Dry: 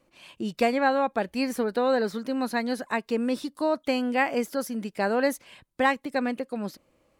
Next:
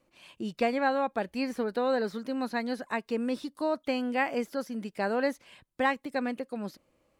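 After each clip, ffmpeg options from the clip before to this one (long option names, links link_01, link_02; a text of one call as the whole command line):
ffmpeg -i in.wav -filter_complex "[0:a]acrossover=split=5200[link_01][link_02];[link_02]acompressor=threshold=-49dB:ratio=4:attack=1:release=60[link_03];[link_01][link_03]amix=inputs=2:normalize=0,volume=-4dB" out.wav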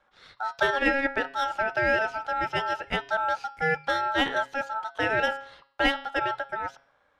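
ffmpeg -i in.wav -af "adynamicsmooth=sensitivity=7.5:basefreq=4400,bandreject=frequency=139.1:width_type=h:width=4,bandreject=frequency=278.2:width_type=h:width=4,bandreject=frequency=417.3:width_type=h:width=4,bandreject=frequency=556.4:width_type=h:width=4,bandreject=frequency=695.5:width_type=h:width=4,bandreject=frequency=834.6:width_type=h:width=4,bandreject=frequency=973.7:width_type=h:width=4,bandreject=frequency=1112.8:width_type=h:width=4,bandreject=frequency=1251.9:width_type=h:width=4,bandreject=frequency=1391:width_type=h:width=4,bandreject=frequency=1530.1:width_type=h:width=4,bandreject=frequency=1669.2:width_type=h:width=4,bandreject=frequency=1808.3:width_type=h:width=4,bandreject=frequency=1947.4:width_type=h:width=4,bandreject=frequency=2086.5:width_type=h:width=4,bandreject=frequency=2225.6:width_type=h:width=4,bandreject=frequency=2364.7:width_type=h:width=4,bandreject=frequency=2503.8:width_type=h:width=4,bandreject=frequency=2642.9:width_type=h:width=4,bandreject=frequency=2782:width_type=h:width=4,bandreject=frequency=2921.1:width_type=h:width=4,bandreject=frequency=3060.2:width_type=h:width=4,bandreject=frequency=3199.3:width_type=h:width=4,bandreject=frequency=3338.4:width_type=h:width=4,bandreject=frequency=3477.5:width_type=h:width=4,bandreject=frequency=3616.6:width_type=h:width=4,bandreject=frequency=3755.7:width_type=h:width=4,bandreject=frequency=3894.8:width_type=h:width=4,bandreject=frequency=4033.9:width_type=h:width=4,bandreject=frequency=4173:width_type=h:width=4,bandreject=frequency=4312.1:width_type=h:width=4,bandreject=frequency=4451.2:width_type=h:width=4,bandreject=frequency=4590.3:width_type=h:width=4,aeval=exprs='val(0)*sin(2*PI*1100*n/s)':channel_layout=same,volume=6.5dB" out.wav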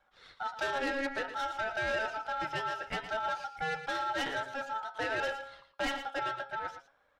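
ffmpeg -i in.wav -filter_complex "[0:a]flanger=delay=1.3:depth=6.3:regen=58:speed=0.55:shape=sinusoidal,asoftclip=type=tanh:threshold=-28dB,asplit=2[link_01][link_02];[link_02]aecho=0:1:114:0.282[link_03];[link_01][link_03]amix=inputs=2:normalize=0" out.wav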